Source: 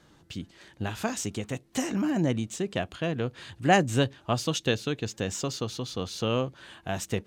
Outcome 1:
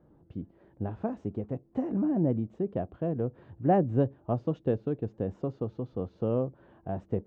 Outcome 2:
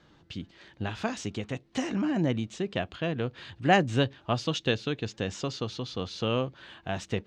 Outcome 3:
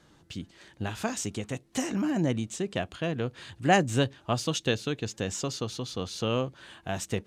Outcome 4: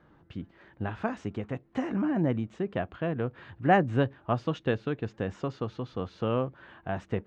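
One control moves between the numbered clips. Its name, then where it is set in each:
Chebyshev low-pass filter, frequency: 580, 4,000, 11,000, 1,500 Hertz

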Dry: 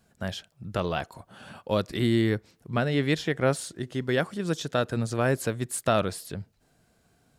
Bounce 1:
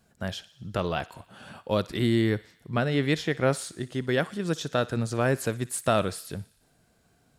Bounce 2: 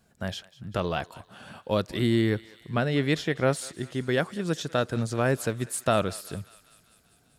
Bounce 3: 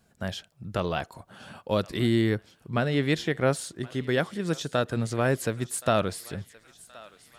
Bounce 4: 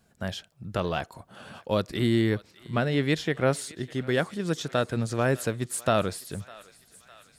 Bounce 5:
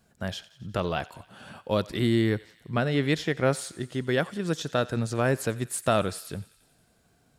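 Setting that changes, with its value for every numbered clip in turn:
feedback echo with a high-pass in the loop, delay time: 60, 197, 1,073, 605, 90 milliseconds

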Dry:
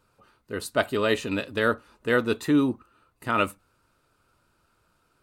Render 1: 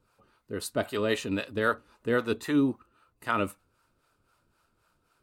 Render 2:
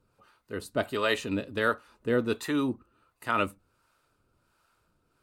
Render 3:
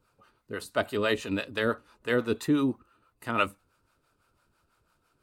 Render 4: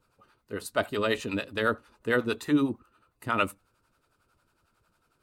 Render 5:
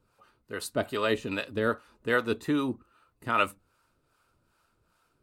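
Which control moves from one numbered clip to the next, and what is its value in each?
two-band tremolo in antiphase, speed: 3.8, 1.4, 6, 11, 2.5 Hertz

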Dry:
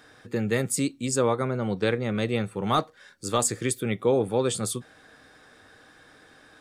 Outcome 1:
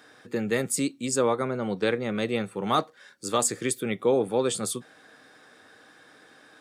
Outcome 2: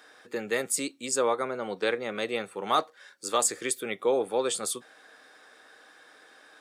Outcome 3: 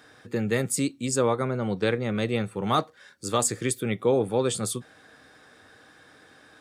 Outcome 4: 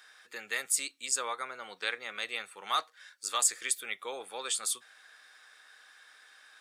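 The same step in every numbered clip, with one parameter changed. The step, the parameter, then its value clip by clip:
high-pass filter, corner frequency: 170, 430, 63, 1,400 Hertz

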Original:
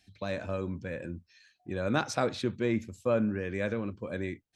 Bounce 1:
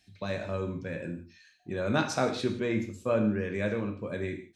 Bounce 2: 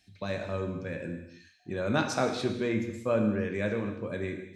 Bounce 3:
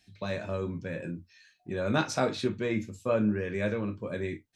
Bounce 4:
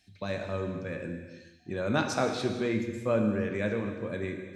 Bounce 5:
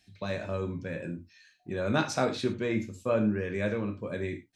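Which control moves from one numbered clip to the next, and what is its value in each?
reverb whose tail is shaped and stops, gate: 200, 340, 80, 500, 130 milliseconds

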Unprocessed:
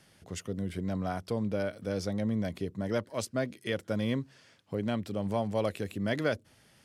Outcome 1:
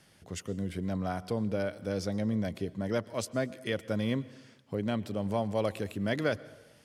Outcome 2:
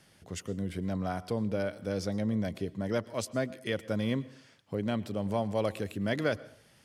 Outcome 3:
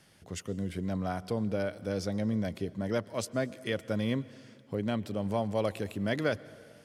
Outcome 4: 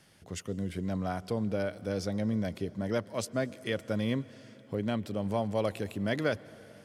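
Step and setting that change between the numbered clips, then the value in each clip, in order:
dense smooth reverb, RT60: 1.1, 0.52, 2.4, 5.3 seconds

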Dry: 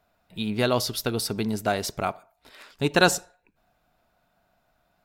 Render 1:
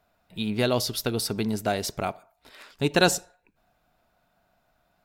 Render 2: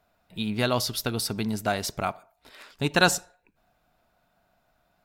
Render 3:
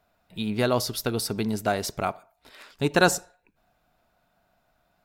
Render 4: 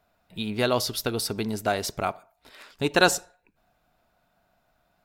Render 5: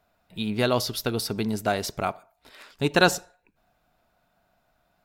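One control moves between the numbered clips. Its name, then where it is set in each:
dynamic equaliser, frequency: 1,200, 420, 3,200, 160, 8,600 Hertz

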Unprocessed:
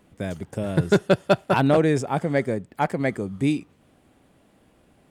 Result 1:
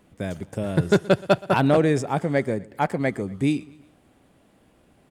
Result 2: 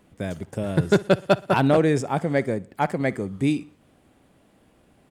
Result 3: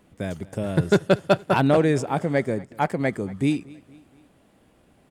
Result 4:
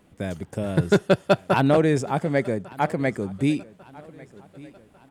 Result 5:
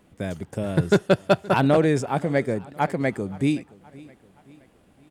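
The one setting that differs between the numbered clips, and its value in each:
repeating echo, delay time: 122, 60, 234, 1,147, 521 milliseconds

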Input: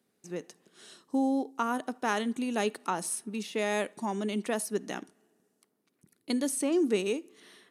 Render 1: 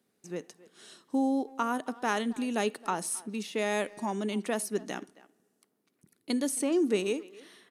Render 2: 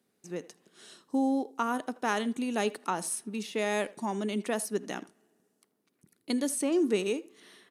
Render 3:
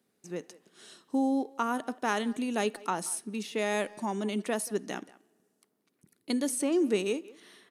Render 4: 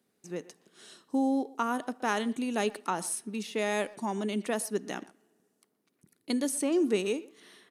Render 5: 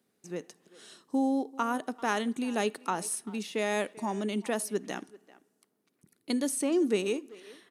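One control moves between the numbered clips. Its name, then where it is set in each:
far-end echo of a speakerphone, delay time: 270, 80, 180, 120, 390 milliseconds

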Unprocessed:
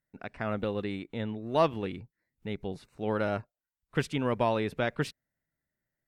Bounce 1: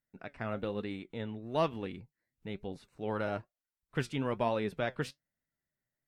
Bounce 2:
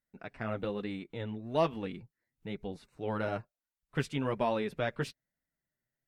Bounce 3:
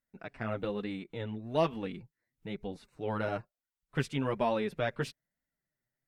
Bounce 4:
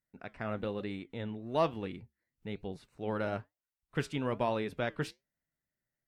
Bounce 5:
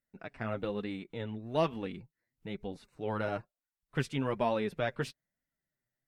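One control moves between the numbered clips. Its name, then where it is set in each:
flanger, regen: +69, −25, +2, −80, +25%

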